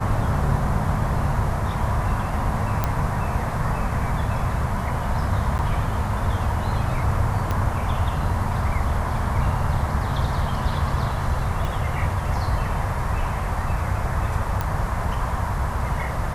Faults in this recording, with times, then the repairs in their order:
2.84 pop -8 dBFS
5.58–5.59 gap 9.9 ms
7.51 pop -12 dBFS
11.65 pop
14.61 pop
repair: de-click; interpolate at 5.58, 9.9 ms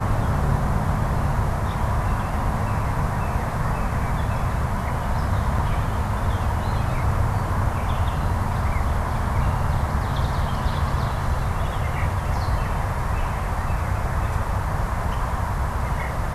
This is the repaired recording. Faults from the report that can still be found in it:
2.84 pop
7.51 pop
11.65 pop

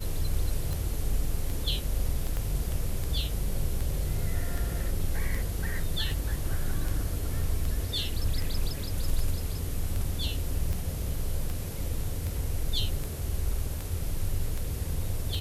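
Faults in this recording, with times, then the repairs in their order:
tick 78 rpm
2.37 pop -20 dBFS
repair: de-click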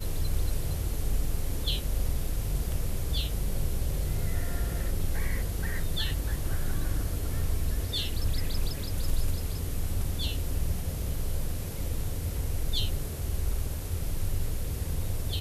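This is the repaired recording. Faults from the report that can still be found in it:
2.37 pop

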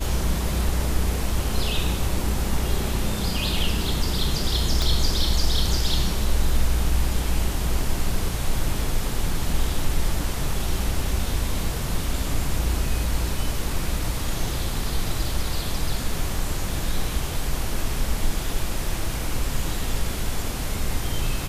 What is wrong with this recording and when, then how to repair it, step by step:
4.82 pop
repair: de-click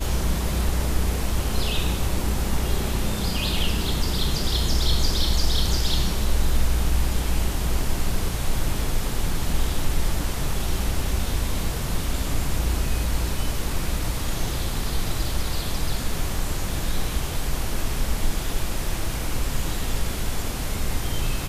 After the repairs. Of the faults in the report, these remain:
4.82 pop

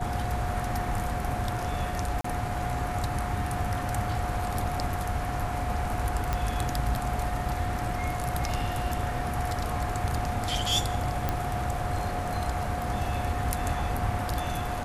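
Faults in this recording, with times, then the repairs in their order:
tone 720 Hz -34 dBFS
2.21–2.24 gap 34 ms
6.33 pop -14 dBFS
11.29 pop -13 dBFS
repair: de-click; notch 720 Hz, Q 30; interpolate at 2.21, 34 ms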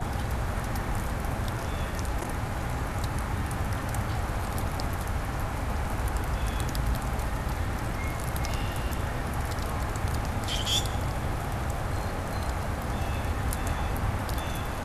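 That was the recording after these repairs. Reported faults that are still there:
none

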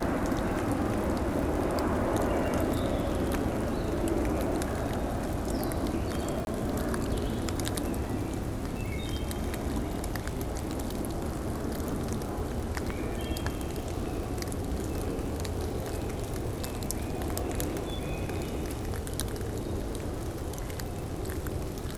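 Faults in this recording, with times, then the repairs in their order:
crackle 36/s -34 dBFS
6.45–6.47 gap 21 ms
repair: de-click; interpolate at 6.45, 21 ms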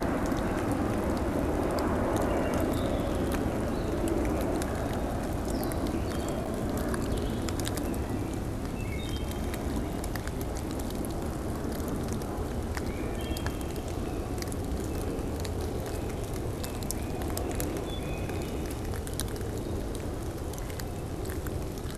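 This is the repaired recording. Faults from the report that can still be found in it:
none

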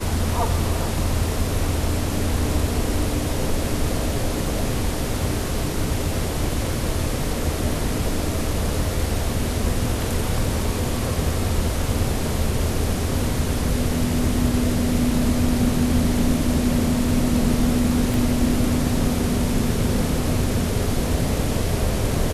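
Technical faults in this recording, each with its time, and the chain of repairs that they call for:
18.14 pop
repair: de-click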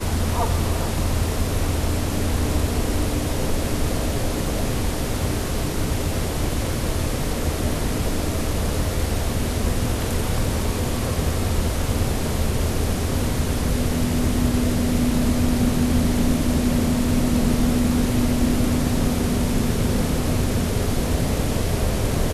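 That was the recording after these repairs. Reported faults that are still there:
18.14 pop

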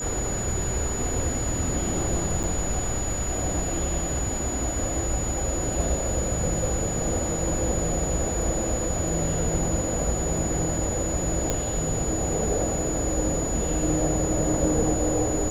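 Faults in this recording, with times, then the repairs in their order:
tone 6900 Hz -30 dBFS
2.43–2.44 gap 7.8 ms
11.5 pop -10 dBFS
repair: de-click; notch 6900 Hz, Q 30; interpolate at 2.43, 7.8 ms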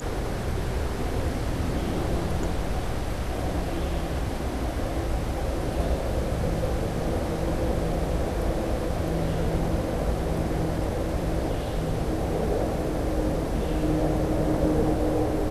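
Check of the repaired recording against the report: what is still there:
none

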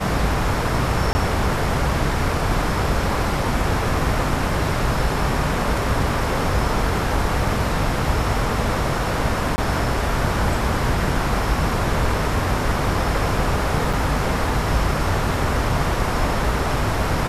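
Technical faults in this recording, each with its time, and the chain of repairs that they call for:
1.13–1.15 gap 20 ms
9.56–9.58 gap 20 ms
13.93 gap 4.2 ms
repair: interpolate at 1.13, 20 ms; interpolate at 9.56, 20 ms; interpolate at 13.93, 4.2 ms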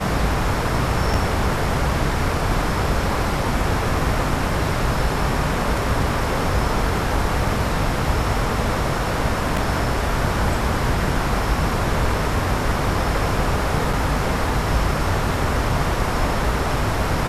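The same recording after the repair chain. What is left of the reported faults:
none

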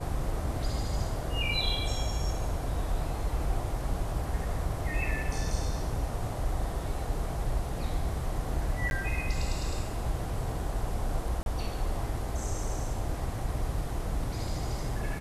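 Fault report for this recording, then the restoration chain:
8.9–8.91 gap 11 ms
11.43–11.46 gap 31 ms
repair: interpolate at 8.9, 11 ms; interpolate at 11.43, 31 ms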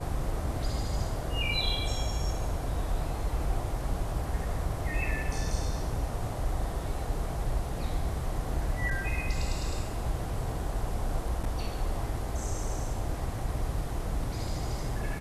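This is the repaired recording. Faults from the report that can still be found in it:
none

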